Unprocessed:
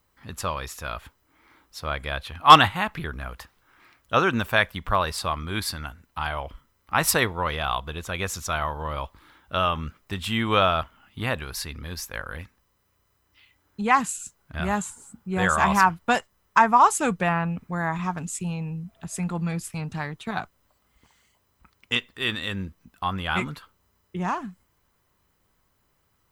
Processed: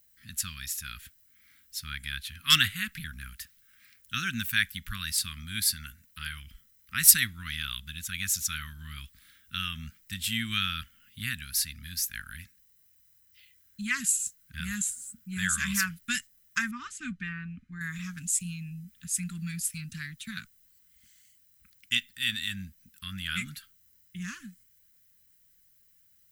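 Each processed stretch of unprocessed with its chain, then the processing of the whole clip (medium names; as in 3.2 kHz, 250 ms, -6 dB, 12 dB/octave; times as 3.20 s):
16.71–17.81 s: comb 3.3 ms, depth 39% + short-mantissa float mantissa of 8-bit + tape spacing loss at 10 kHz 28 dB
whole clip: dynamic bell 950 Hz, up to -5 dB, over -38 dBFS, Q 4.2; Chebyshev band-stop 230–1600 Hz, order 3; pre-emphasis filter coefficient 0.8; trim +6.5 dB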